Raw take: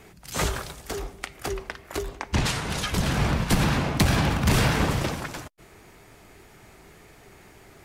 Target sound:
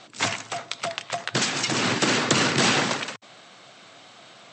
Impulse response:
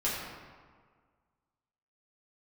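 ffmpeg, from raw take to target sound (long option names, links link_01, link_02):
-af "asetrate=76440,aresample=44100,lowshelf=frequency=480:gain=-10.5,afftfilt=real='re*between(b*sr/4096,100,8200)':imag='im*between(b*sr/4096,100,8200)':win_size=4096:overlap=0.75,volume=5.5dB"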